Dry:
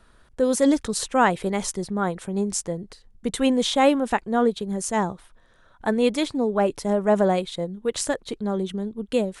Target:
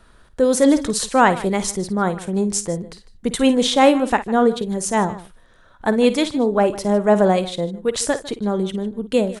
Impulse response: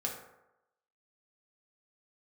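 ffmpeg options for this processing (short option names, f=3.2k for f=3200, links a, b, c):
-af "aecho=1:1:53|152:0.211|0.126,volume=4.5dB"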